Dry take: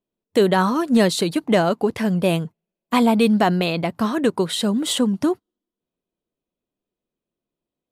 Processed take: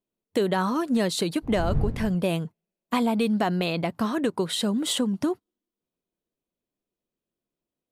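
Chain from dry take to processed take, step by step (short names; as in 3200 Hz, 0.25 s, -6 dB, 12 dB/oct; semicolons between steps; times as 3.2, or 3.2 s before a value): 1.42–2.14 wind noise 110 Hz -19 dBFS; compressor 2.5:1, threshold -19 dBFS, peak gain reduction 7 dB; gain -3 dB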